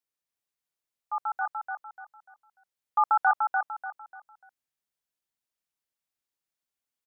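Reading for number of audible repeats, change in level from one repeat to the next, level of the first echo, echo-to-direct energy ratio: 4, −10.0 dB, −4.0 dB, −3.5 dB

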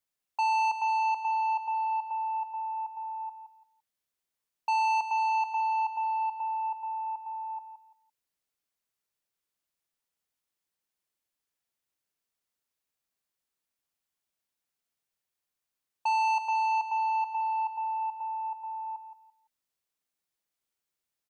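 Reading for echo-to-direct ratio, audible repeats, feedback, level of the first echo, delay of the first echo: −10.0 dB, 3, 24%, −10.0 dB, 170 ms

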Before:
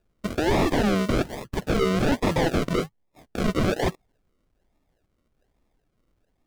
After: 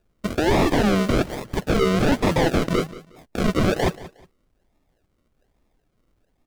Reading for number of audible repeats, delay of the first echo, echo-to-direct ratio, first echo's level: 2, 181 ms, −17.5 dB, −17.5 dB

